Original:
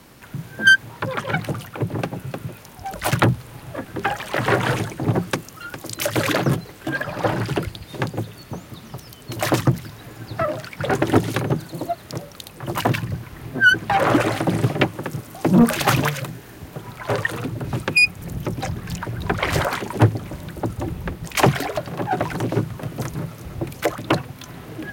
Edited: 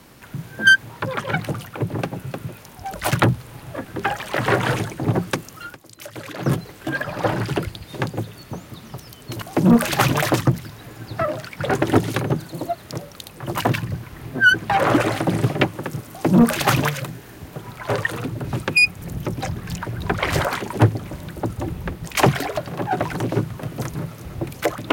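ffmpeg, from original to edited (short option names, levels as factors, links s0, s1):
-filter_complex "[0:a]asplit=5[s0][s1][s2][s3][s4];[s0]atrim=end=5.78,asetpts=PTS-STARTPTS,afade=t=out:st=5.66:d=0.12:silence=0.199526[s5];[s1]atrim=start=5.78:end=6.37,asetpts=PTS-STARTPTS,volume=0.2[s6];[s2]atrim=start=6.37:end=9.422,asetpts=PTS-STARTPTS,afade=t=in:d=0.12:silence=0.199526[s7];[s3]atrim=start=15.298:end=16.102[s8];[s4]atrim=start=9.418[s9];[s5][s6][s7]concat=n=3:v=0:a=1[s10];[s10][s8]acrossfade=d=0.004:c1=hsin:c2=hsin[s11];[s11][s9]acrossfade=d=0.004:c1=hsin:c2=hsin"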